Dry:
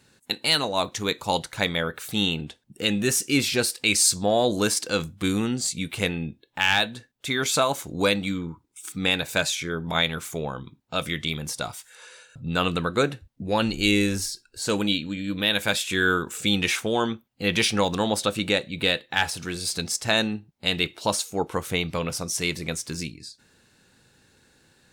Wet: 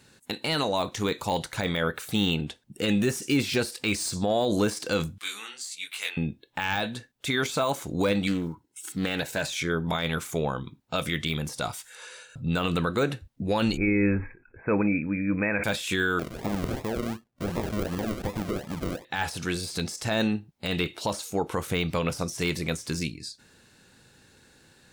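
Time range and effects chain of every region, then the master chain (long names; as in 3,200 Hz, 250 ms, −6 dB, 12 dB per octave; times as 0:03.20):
0:05.18–0:06.17: high-pass filter 1,400 Hz + micro pitch shift up and down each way 47 cents
0:08.27–0:09.44: one scale factor per block 7 bits + notch comb filter 1,200 Hz + highs frequency-modulated by the lows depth 0.18 ms
0:13.77–0:15.64: linear-phase brick-wall low-pass 2,600 Hz + level that may fall only so fast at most 140 dB per second
0:16.19–0:19.05: low-pass filter 4,000 Hz 6 dB per octave + downward compressor 3 to 1, threshold −29 dBFS + sample-and-hold swept by an LFO 41×, swing 60% 2.7 Hz
whole clip: de-essing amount 70%; brickwall limiter −17.5 dBFS; level +2.5 dB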